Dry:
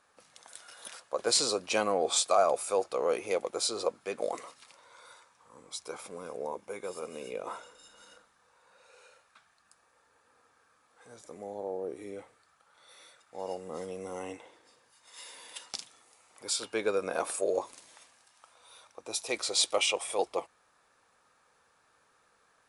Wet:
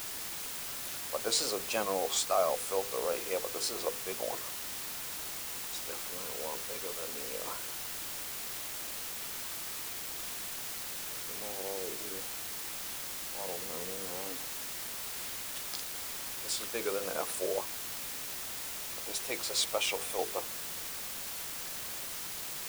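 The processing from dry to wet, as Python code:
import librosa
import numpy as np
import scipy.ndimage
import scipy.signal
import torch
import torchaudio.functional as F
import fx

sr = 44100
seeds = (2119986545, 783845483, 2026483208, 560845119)

y = fx.vibrato(x, sr, rate_hz=3.6, depth_cents=84.0)
y = fx.hum_notches(y, sr, base_hz=50, count=10)
y = fx.quant_dither(y, sr, seeds[0], bits=6, dither='triangular')
y = F.gain(torch.from_numpy(y), -4.0).numpy()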